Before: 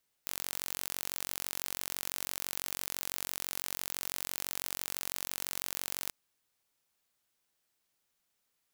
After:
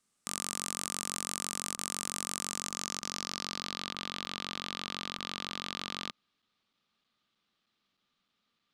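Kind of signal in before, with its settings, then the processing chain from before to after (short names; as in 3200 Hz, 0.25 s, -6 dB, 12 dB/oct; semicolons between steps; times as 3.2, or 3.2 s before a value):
pulse train 46/s, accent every 0, -9 dBFS 5.83 s
small resonant body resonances 210/1200 Hz, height 13 dB, ringing for 30 ms; low-pass sweep 8500 Hz -> 3700 Hz, 2.38–3.97; crackling interface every 0.31 s, samples 256, zero, from 0.84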